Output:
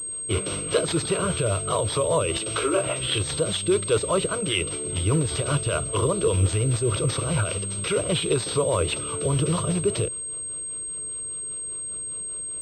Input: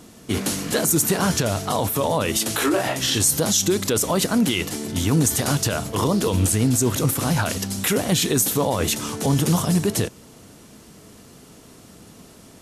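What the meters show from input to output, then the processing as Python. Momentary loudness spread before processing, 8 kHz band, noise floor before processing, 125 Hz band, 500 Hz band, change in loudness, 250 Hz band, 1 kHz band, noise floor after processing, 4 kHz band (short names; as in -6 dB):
5 LU, -2.5 dB, -47 dBFS, -2.0 dB, +0.5 dB, -4.0 dB, -7.5 dB, -4.0 dB, -33 dBFS, -3.5 dB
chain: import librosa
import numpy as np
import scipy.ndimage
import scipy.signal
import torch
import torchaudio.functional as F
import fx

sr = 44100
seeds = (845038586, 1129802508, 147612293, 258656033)

y = fx.rotary(x, sr, hz=5.0)
y = fx.fixed_phaser(y, sr, hz=1200.0, stages=8)
y = fx.pwm(y, sr, carrier_hz=8400.0)
y = F.gain(torch.from_numpy(y), 3.5).numpy()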